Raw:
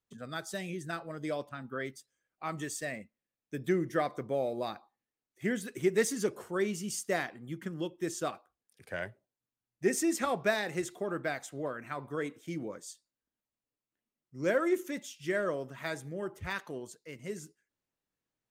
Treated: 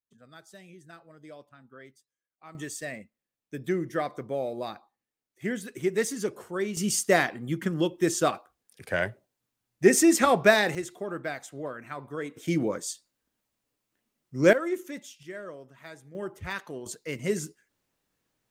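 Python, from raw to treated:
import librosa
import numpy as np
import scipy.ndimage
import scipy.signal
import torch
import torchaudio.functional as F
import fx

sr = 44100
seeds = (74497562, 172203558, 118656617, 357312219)

y = fx.gain(x, sr, db=fx.steps((0.0, -11.5), (2.55, 1.0), (6.77, 10.0), (10.75, 0.5), (12.37, 11.5), (14.53, -1.0), (15.23, -8.5), (16.15, 2.0), (16.86, 11.5)))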